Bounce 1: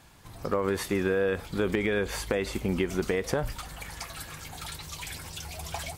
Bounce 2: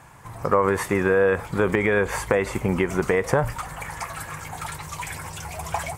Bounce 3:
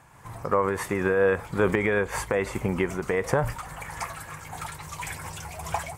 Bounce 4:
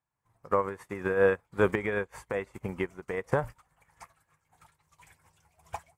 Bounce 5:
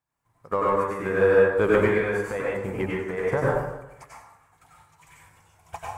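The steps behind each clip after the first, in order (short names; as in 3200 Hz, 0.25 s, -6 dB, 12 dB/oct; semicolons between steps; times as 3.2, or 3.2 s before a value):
ten-band EQ 125 Hz +10 dB, 500 Hz +5 dB, 1000 Hz +11 dB, 2000 Hz +7 dB, 4000 Hz -7 dB, 8000 Hz +6 dB
noise-modulated level, depth 60%
upward expander 2.5:1, over -42 dBFS
in parallel at -9.5 dB: soft clip -25.5 dBFS, distortion -8 dB; on the sum: plate-style reverb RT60 0.96 s, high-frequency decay 0.6×, pre-delay 80 ms, DRR -5.5 dB; gain -1.5 dB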